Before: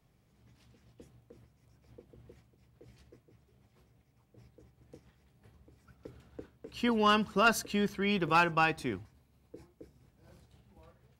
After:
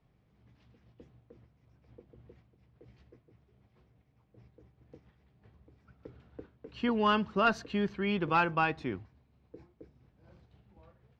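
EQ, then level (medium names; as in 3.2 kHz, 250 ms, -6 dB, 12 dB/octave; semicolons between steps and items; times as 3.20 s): distance through air 200 m; 0.0 dB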